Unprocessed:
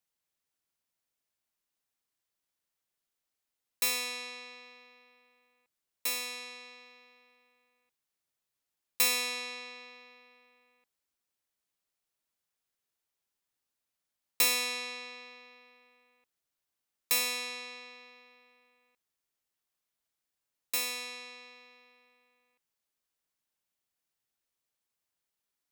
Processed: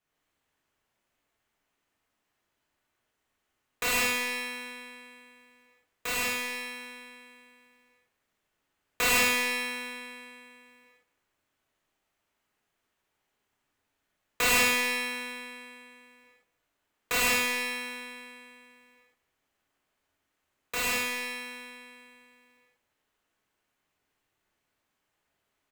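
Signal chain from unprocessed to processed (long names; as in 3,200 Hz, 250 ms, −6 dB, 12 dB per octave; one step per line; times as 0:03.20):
running median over 9 samples
far-end echo of a speakerphone 210 ms, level −21 dB
reverb whose tail is shaped and stops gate 210 ms flat, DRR −8 dB
level +5 dB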